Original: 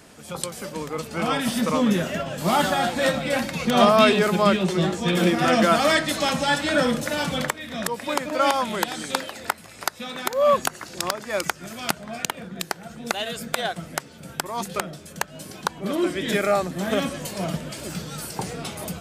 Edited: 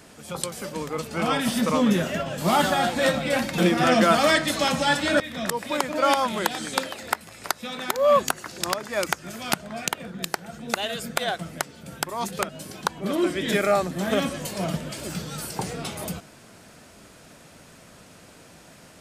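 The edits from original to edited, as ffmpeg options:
-filter_complex "[0:a]asplit=4[s0][s1][s2][s3];[s0]atrim=end=3.582[s4];[s1]atrim=start=5.188:end=6.812[s5];[s2]atrim=start=7.568:end=14.862[s6];[s3]atrim=start=15.288[s7];[s4][s5]acrossfade=d=0.004:c1=hsin:c2=hsin[s8];[s8][s6]acrossfade=d=0.004:c1=hsin:c2=hsin[s9];[s9][s7]acrossfade=d=0.004:c1=hsin:c2=hsin"

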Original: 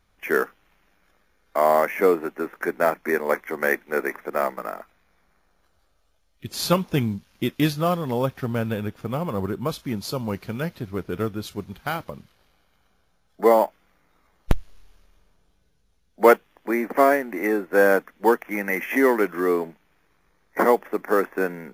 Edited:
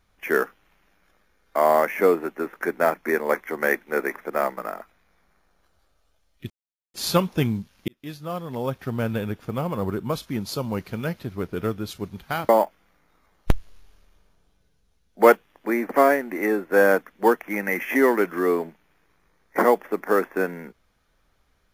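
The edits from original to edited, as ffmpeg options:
-filter_complex "[0:a]asplit=4[s0][s1][s2][s3];[s0]atrim=end=6.5,asetpts=PTS-STARTPTS,afade=t=out:st=6.496:d=0.004:c=hsin,apad=pad_dur=0.44[s4];[s1]atrim=start=6.5:end=7.44,asetpts=PTS-STARTPTS,afade=t=in:d=0.004:c=hsin,afade=t=out:st=0.936:d=0.004:c=hsin[s5];[s2]atrim=start=7.44:end=12.052,asetpts=PTS-STARTPTS,afade=t=in:d=1.2[s6];[s3]atrim=start=13.498[s7];[s4][s5][s6]concat=n=3:v=0:a=1[s8];[s8][s7]acrossfade=d=0.004:c1=hsin:c2=hsin"

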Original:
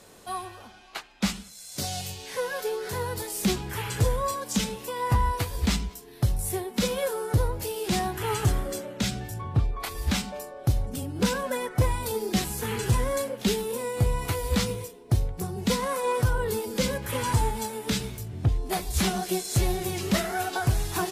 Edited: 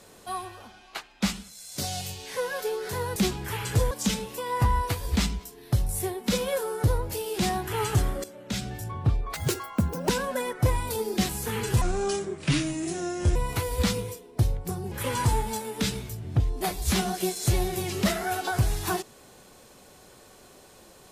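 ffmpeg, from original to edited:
-filter_complex "[0:a]asplit=9[s0][s1][s2][s3][s4][s5][s6][s7][s8];[s0]atrim=end=3.162[s9];[s1]atrim=start=3.408:end=4.162[s10];[s2]atrim=start=4.408:end=8.74,asetpts=PTS-STARTPTS,afade=t=out:st=4.328:d=0.004:c=hsin:silence=0.211349[s11];[s3]atrim=start=8.74:end=9.844,asetpts=PTS-STARTPTS,afade=t=in:d=0.52:silence=0.211349[s12];[s4]atrim=start=9.84:end=11.25,asetpts=PTS-STARTPTS,asetrate=82467,aresample=44100[s13];[s5]atrim=start=11.246:end=12.974[s14];[s6]atrim=start=12.97:end=14.08,asetpts=PTS-STARTPTS,asetrate=31752,aresample=44100[s15];[s7]atrim=start=14.076:end=15.642[s16];[s8]atrim=start=16.998[s17];[s9][s10]acrossfade=d=0.004:c1=hsin:c2=hsin[s18];[s11][s12]concat=n=2:v=0:a=1[s19];[s18][s19]acrossfade=d=0.004:c1=hsin:c2=hsin[s20];[s20][s13]acrossfade=d=0.004:c1=hsin:c2=hsin[s21];[s21][s14]acrossfade=d=0.004:c1=hsin:c2=hsin[s22];[s22][s15]acrossfade=d=0.004:c1=hsin:c2=hsin[s23];[s23][s16]acrossfade=d=0.004:c1=hsin:c2=hsin[s24];[s24][s17]acrossfade=d=0.004:c1=hsin:c2=hsin"

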